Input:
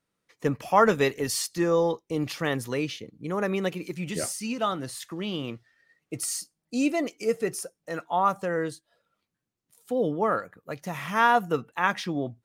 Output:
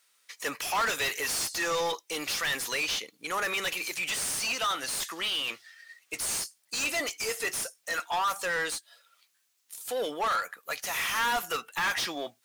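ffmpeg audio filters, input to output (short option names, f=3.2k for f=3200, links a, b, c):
-filter_complex "[0:a]aderivative,asplit=2[a][b];[b]highpass=f=720:p=1,volume=34dB,asoftclip=type=tanh:threshold=-17dB[c];[a][c]amix=inputs=2:normalize=0,lowpass=f=3.7k:p=1,volume=-6dB,volume=-2dB"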